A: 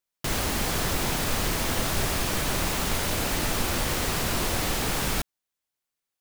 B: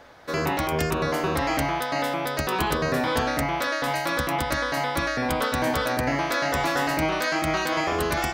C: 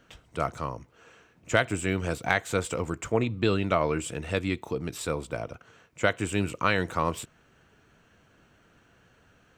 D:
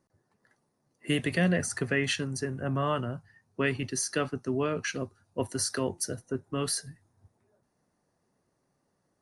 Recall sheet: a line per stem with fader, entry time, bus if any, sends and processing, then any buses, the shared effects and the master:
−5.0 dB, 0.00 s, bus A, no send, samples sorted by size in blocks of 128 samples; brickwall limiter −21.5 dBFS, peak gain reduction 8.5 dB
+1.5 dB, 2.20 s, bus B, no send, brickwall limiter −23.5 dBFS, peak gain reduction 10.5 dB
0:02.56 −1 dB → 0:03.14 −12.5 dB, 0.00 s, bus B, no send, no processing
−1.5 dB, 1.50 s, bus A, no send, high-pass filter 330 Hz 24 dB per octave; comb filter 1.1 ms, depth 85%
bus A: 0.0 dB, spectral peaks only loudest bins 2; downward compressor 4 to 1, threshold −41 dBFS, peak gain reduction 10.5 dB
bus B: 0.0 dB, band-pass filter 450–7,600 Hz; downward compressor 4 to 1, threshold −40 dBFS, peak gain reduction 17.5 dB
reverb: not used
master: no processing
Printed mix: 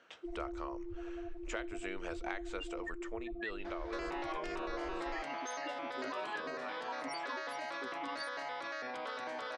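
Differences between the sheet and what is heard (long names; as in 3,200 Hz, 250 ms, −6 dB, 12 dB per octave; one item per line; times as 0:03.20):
stem A −5.0 dB → +2.0 dB
stem B: entry 2.20 s → 3.65 s
master: extra high-frequency loss of the air 72 metres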